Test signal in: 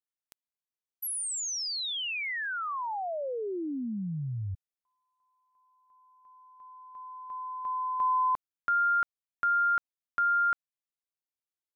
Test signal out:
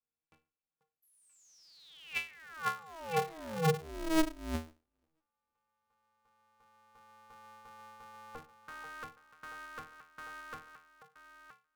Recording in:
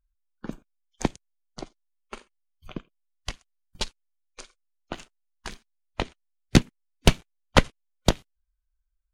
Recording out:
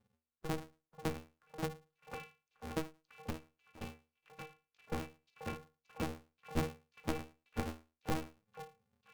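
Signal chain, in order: dynamic EQ 180 Hz, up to -4 dB, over -37 dBFS, Q 1.4; reverse; compressor 20:1, threshold -36 dBFS; reverse; octave resonator D#, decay 0.3 s; delay with a stepping band-pass 0.487 s, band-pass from 720 Hz, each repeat 1.4 oct, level -5 dB; polarity switched at an audio rate 160 Hz; gain +17.5 dB

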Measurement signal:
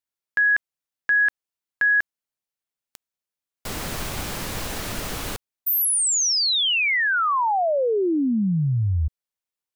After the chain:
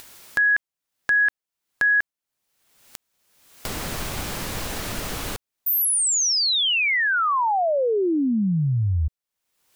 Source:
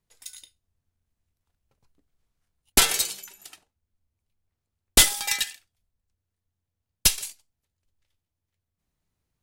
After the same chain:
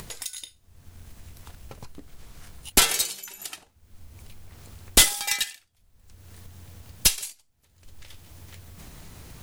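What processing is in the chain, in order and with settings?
upward compressor 4:1, threshold -28 dBFS

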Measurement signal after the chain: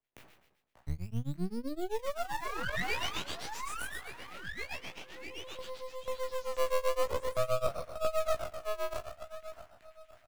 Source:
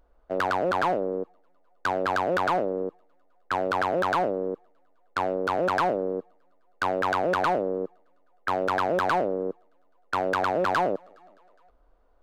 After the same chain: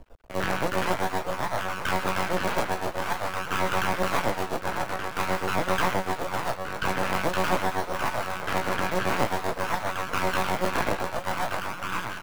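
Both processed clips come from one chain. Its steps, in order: spectral trails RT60 0.90 s; resonant high shelf 3900 Hz -13 dB, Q 1.5; on a send: delay with a stepping band-pass 0.587 s, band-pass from 800 Hz, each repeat 0.7 oct, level -3 dB; on the sum: harmonic tremolo 7.7 Hz, depth 100%, crossover 1300 Hz; in parallel at -5 dB: decimation with a swept rate 18×, swing 100% 0.48 Hz; on the sum: doubler 16 ms -6 dB; half-wave rectifier; three-band squash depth 40%

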